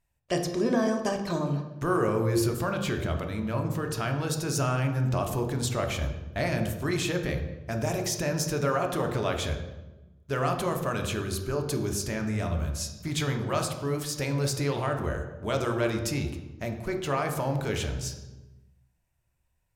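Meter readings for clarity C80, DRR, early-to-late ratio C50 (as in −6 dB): 9.0 dB, 3.5 dB, 7.0 dB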